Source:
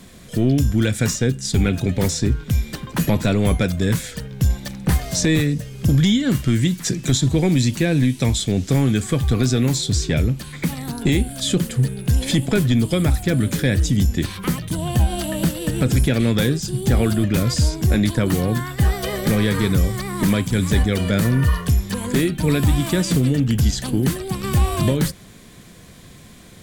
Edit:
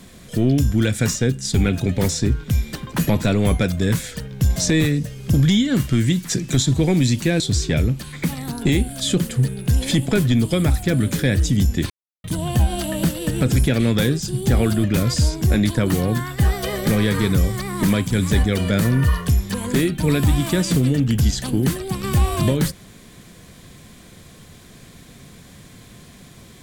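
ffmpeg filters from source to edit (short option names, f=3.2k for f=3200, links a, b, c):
-filter_complex "[0:a]asplit=5[a][b][c][d][e];[a]atrim=end=4.562[f];[b]atrim=start=5.108:end=7.952[g];[c]atrim=start=9.798:end=14.3,asetpts=PTS-STARTPTS,afade=t=out:st=4.498:d=0.004:c=hsin[h];[d]atrim=start=14.3:end=14.64,asetpts=PTS-STARTPTS,volume=0[i];[e]atrim=start=14.64,asetpts=PTS-STARTPTS,afade=t=in:d=0.004:c=hsin[j];[f][g]acrossfade=d=0.004:c1=hsin:c2=hsin[k];[h][i][j]concat=n=3:v=0:a=1[l];[k][l]acrossfade=d=0.004:c1=hsin:c2=hsin"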